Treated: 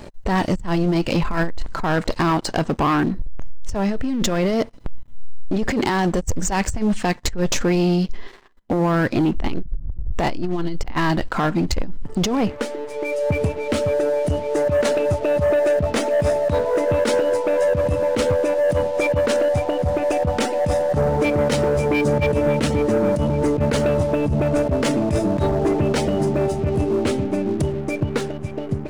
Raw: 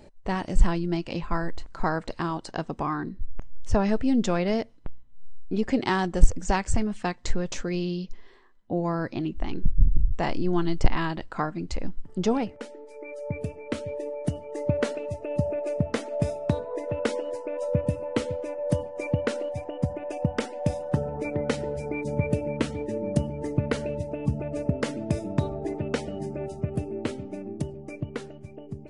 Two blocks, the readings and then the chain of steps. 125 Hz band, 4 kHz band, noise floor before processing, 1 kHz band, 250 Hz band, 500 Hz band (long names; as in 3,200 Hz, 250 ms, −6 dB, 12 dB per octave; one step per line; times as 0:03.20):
+6.0 dB, +10.0 dB, −48 dBFS, +8.0 dB, +7.5 dB, +10.5 dB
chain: compressor whose output falls as the input rises −28 dBFS, ratio −1
leveller curve on the samples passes 3